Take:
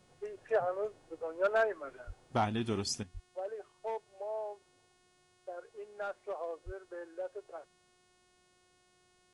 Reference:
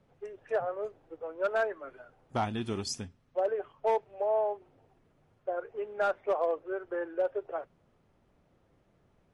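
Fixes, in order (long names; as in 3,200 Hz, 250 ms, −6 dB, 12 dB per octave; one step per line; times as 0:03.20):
hum removal 363 Hz, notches 28
high-pass at the plosives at 0:02.06/0:03.13/0:06.65
level correction +10.5 dB, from 0:03.03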